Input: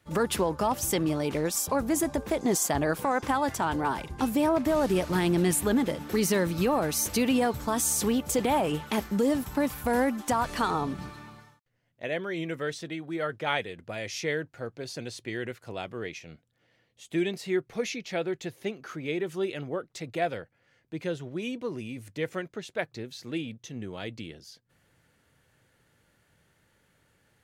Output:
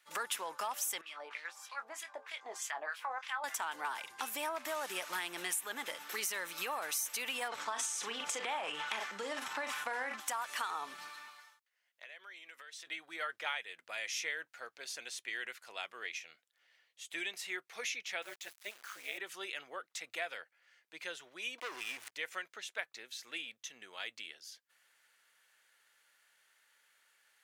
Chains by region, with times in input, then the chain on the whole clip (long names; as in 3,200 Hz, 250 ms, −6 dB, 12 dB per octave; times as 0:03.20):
0:01.01–0:03.44: LFO wah 3.2 Hz 590–3,100 Hz, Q 2 + double-tracking delay 23 ms −10.5 dB
0:07.48–0:10.20: high-frequency loss of the air 98 metres + double-tracking delay 40 ms −9 dB + transient designer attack +3 dB, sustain +9 dB
0:11.28–0:12.87: high-pass filter 450 Hz 6 dB per octave + downward compressor 16 to 1, threshold −43 dBFS
0:18.22–0:19.18: bit-depth reduction 8 bits, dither none + amplitude modulation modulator 210 Hz, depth 80%
0:21.58–0:22.12: slack as between gear wheels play −44 dBFS + parametric band 190 Hz −13 dB 0.81 octaves + leveller curve on the samples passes 3
whole clip: high-pass filter 1,300 Hz 12 dB per octave; dynamic equaliser 4,500 Hz, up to −7 dB, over −56 dBFS, Q 4.2; downward compressor 5 to 1, threshold −35 dBFS; level +1 dB